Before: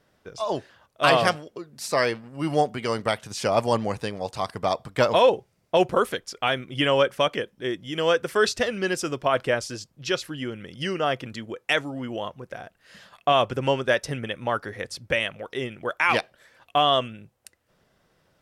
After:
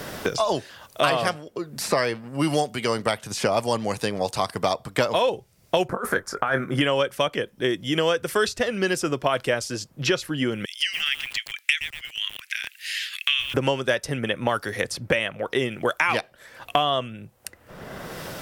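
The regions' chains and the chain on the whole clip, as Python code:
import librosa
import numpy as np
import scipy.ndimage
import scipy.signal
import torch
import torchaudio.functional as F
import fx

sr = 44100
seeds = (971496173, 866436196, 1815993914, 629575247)

y = fx.chain(x, sr, fx.high_shelf_res(hz=2100.0, db=-12.5, q=3.0),
    fx.over_compress(threshold_db=-27.0, ratio=-1.0),
    fx.doubler(ms=21.0, db=-9.5), at=(5.88, 6.81))
y = fx.chain(y, sr, fx.steep_highpass(hz=2200.0, slope=36),
    fx.echo_crushed(ms=117, feedback_pct=35, bits=7, wet_db=-9.0), at=(10.65, 13.54))
y = fx.high_shelf(y, sr, hz=9200.0, db=8.5)
y = fx.band_squash(y, sr, depth_pct=100)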